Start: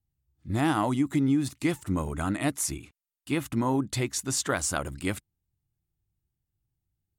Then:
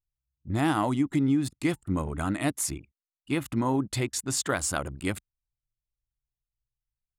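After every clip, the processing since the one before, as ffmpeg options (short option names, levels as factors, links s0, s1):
-af "bandreject=f=5900:w=15,anlmdn=0.398"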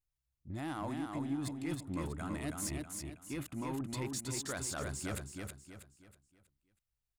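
-af "areverse,acompressor=threshold=0.02:ratio=6,areverse,asoftclip=type=tanh:threshold=0.0299,aecho=1:1:321|642|963|1284|1605:0.631|0.233|0.0864|0.032|0.0118,volume=0.891"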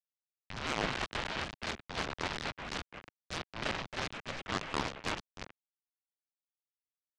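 -af "acrusher=bits=5:mix=0:aa=0.000001,highpass=f=440:t=q:w=0.5412,highpass=f=440:t=q:w=1.307,lowpass=f=3200:t=q:w=0.5176,lowpass=f=3200:t=q:w=0.7071,lowpass=f=3200:t=q:w=1.932,afreqshift=-370,aeval=exprs='0.0473*(cos(1*acos(clip(val(0)/0.0473,-1,1)))-cos(1*PI/2))+0.015*(cos(7*acos(clip(val(0)/0.0473,-1,1)))-cos(7*PI/2))':c=same,volume=2.11"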